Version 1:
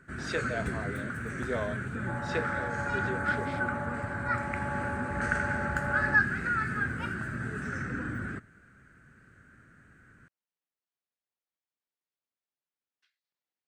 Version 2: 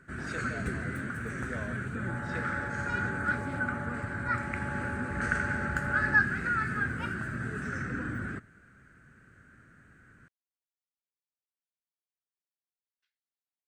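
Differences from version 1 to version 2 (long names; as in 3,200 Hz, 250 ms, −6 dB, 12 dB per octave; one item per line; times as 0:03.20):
speech −10.0 dB
second sound −5.5 dB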